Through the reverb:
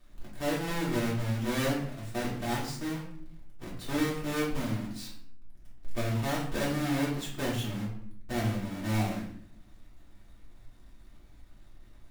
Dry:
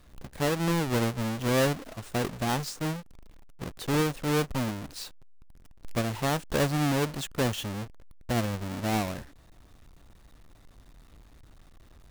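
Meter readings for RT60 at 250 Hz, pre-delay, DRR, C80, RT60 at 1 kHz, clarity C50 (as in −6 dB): 0.95 s, 3 ms, −7.0 dB, 8.5 dB, 0.55 s, 5.0 dB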